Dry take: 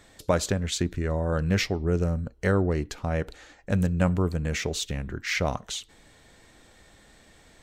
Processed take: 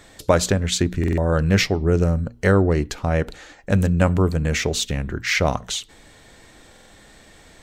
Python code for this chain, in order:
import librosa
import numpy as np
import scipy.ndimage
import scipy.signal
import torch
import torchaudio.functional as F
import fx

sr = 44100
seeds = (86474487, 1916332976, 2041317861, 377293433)

y = fx.hum_notches(x, sr, base_hz=60, count=4)
y = fx.buffer_glitch(y, sr, at_s=(0.99, 6.71), block=2048, repeats=3)
y = y * librosa.db_to_amplitude(7.0)